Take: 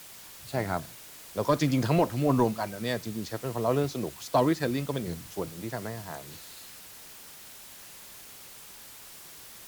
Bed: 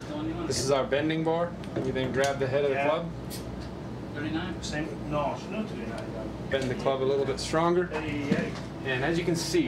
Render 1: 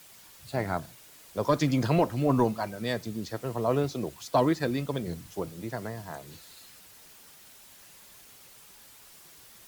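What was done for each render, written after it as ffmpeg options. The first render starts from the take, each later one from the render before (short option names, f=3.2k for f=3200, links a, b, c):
-af "afftdn=nr=6:nf=-48"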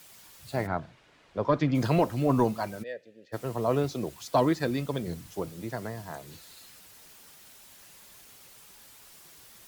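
-filter_complex "[0:a]asplit=3[a][b][c];[a]afade=t=out:st=0.66:d=0.02[d];[b]lowpass=2.7k,afade=t=in:st=0.66:d=0.02,afade=t=out:st=1.74:d=0.02[e];[c]afade=t=in:st=1.74:d=0.02[f];[d][e][f]amix=inputs=3:normalize=0,asplit=3[g][h][i];[g]afade=t=out:st=2.82:d=0.02[j];[h]asplit=3[k][l][m];[k]bandpass=f=530:t=q:w=8,volume=0dB[n];[l]bandpass=f=1.84k:t=q:w=8,volume=-6dB[o];[m]bandpass=f=2.48k:t=q:w=8,volume=-9dB[p];[n][o][p]amix=inputs=3:normalize=0,afade=t=in:st=2.82:d=0.02,afade=t=out:st=3.32:d=0.02[q];[i]afade=t=in:st=3.32:d=0.02[r];[j][q][r]amix=inputs=3:normalize=0"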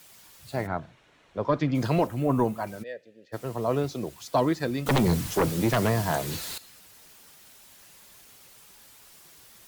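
-filter_complex "[0:a]asettb=1/sr,asplit=3[a][b][c];[a]atrim=end=0.614[d];[b]atrim=start=0.61:end=1.41,asetpts=PTS-STARTPTS,afade=t=in:d=0.004:c=qsin,afade=t=out:st=0.796:d=0.004:c=qsin,bandreject=f=4.8k:w=9.8[e];[c]atrim=start=1.406[f];[d][e]acrossfade=d=0.004:c1=hsin:c2=qsin[g];[g][f]acrossfade=d=0.004:c1=qsin:c2=hsin,asettb=1/sr,asplit=3[h][i][j];[h]atrim=end=2.074[k];[i]atrim=start=2.07:end=2.67,asetpts=PTS-STARTPTS,afade=t=in:d=0.004:c=qsin,afade=t=out:st=0.596:d=0.004:c=qsin,equalizer=f=4.7k:w=1.5:g=-9.5[l];[j]atrim=start=2.666[m];[k][l]acrossfade=d=0.004:c1=hsin:c2=qsin[n];[n][m]acrossfade=d=0.004:c1=qsin:c2=hsin,asettb=1/sr,asplit=3[o][p][q];[o]atrim=end=4.864[r];[p]atrim=start=4.86:end=6.58,asetpts=PTS-STARTPTS,afade=t=in:d=0.004:c=qsin,afade=t=out:st=1.716:d=0.004:c=qsin,aeval=exprs='0.141*sin(PI/2*3.55*val(0)/0.141)':c=same[s];[q]atrim=start=6.576[t];[r][s]acrossfade=d=0.004:c1=hsin:c2=qsin[u];[u][t]acrossfade=d=0.004:c1=qsin:c2=hsin"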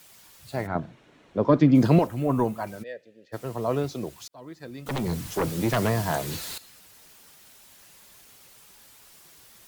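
-filter_complex "[0:a]asettb=1/sr,asplit=3[a][b][c];[a]atrim=end=0.754[d];[b]atrim=start=0.75:end=1.99,asetpts=PTS-STARTPTS,afade=t=in:d=0.004:c=qsin,afade=t=out:st=1.236:d=0.004:c=qsin,equalizer=f=250:w=0.62:g=10[e];[c]atrim=start=1.986[f];[d][e]acrossfade=d=0.004:c1=hsin:c2=qsin[g];[g][f]acrossfade=d=0.004:c1=qsin:c2=hsin,asplit=2[h][i];[h]atrim=end=4.28,asetpts=PTS-STARTPTS,afade=t=out:st=4.276:d=0.004:c=hsin[j];[i]atrim=start=4.28,asetpts=PTS-STARTPTS,afade=t=in:d=1.51[k];[j][k]concat=n=2:v=0:a=1"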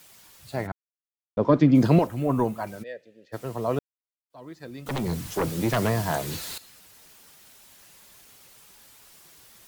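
-filter_complex "[0:a]asplit=5[a][b][c][d][e];[a]atrim=end=0.72,asetpts=PTS-STARTPTS,afade=t=out:st=0.716:d=0.004:c=hsin[f];[b]atrim=start=0.72:end=1.37,asetpts=PTS-STARTPTS,volume=0[g];[c]atrim=start=1.37:end=3.79,asetpts=PTS-STARTPTS,afade=t=in:d=0.004:c=hsin,afade=t=out:st=2.416:d=0.004:c=hsin[h];[d]atrim=start=3.79:end=4.3,asetpts=PTS-STARTPTS,volume=0[i];[e]atrim=start=4.3,asetpts=PTS-STARTPTS,afade=t=in:d=0.004:c=hsin[j];[f][g][h][i][j]concat=n=5:v=0:a=1"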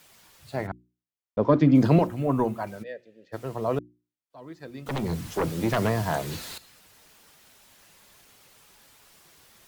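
-af "highshelf=f=5.2k:g=-6,bandreject=f=60:t=h:w=6,bandreject=f=120:t=h:w=6,bandreject=f=180:t=h:w=6,bandreject=f=240:t=h:w=6,bandreject=f=300:t=h:w=6,bandreject=f=360:t=h:w=6"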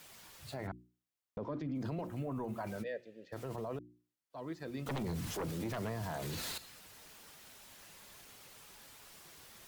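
-af "acompressor=threshold=-30dB:ratio=8,alimiter=level_in=8dB:limit=-24dB:level=0:latency=1:release=16,volume=-8dB"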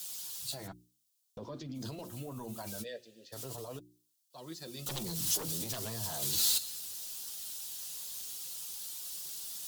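-af "flanger=delay=5.4:depth=3.9:regen=-31:speed=0.22:shape=sinusoidal,aexciter=amount=6.9:drive=5.1:freq=3.1k"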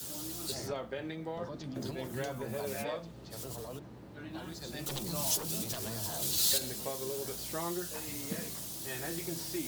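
-filter_complex "[1:a]volume=-13dB[a];[0:a][a]amix=inputs=2:normalize=0"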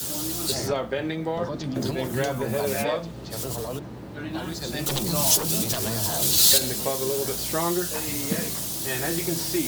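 -af "volume=11.5dB"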